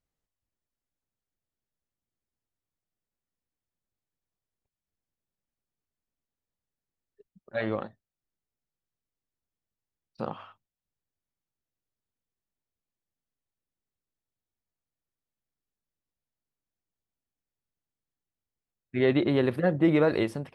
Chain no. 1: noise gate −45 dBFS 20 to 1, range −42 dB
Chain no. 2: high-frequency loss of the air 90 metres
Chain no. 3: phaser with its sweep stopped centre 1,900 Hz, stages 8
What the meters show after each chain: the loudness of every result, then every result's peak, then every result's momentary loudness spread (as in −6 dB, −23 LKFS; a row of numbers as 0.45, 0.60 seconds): −26.0, −27.0, −33.0 LKFS; −11.5, −11.5, −15.5 dBFS; 15, 15, 13 LU